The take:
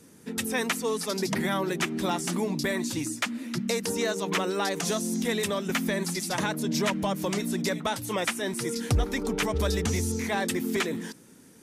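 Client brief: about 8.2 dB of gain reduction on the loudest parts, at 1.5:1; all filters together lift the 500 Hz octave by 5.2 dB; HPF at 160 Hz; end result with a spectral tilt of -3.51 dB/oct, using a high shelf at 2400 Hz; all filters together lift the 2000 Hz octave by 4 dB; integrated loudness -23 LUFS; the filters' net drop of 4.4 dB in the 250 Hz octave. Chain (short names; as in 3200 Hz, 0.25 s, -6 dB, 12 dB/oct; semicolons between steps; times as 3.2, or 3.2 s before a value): HPF 160 Hz; bell 250 Hz -7.5 dB; bell 500 Hz +8.5 dB; bell 2000 Hz +3 dB; high shelf 2400 Hz +3 dB; compressor 1.5:1, threshold -43 dBFS; gain +10.5 dB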